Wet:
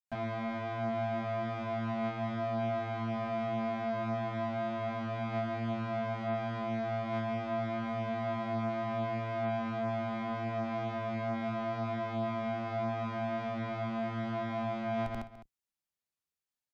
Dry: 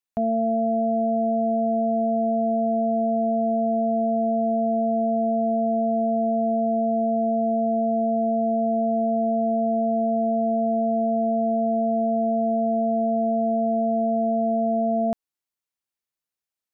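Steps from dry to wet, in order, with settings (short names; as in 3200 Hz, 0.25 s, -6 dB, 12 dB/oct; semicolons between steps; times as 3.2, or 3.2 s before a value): octaver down 1 oct, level 0 dB; soft clip -29.5 dBFS, distortion -7 dB; grains 0.185 s, pitch spread up and down by 0 st; on a send: echo 0.208 s -14.5 dB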